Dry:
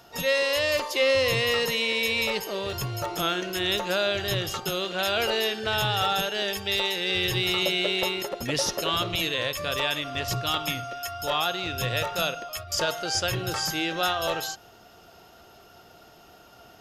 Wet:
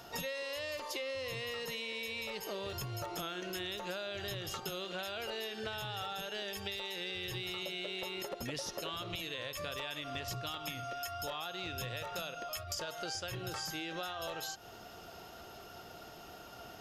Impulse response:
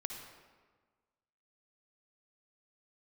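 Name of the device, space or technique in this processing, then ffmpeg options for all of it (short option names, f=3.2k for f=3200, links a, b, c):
serial compression, leveller first: -af "acompressor=threshold=-27dB:ratio=2.5,acompressor=threshold=-39dB:ratio=6,volume=1dB"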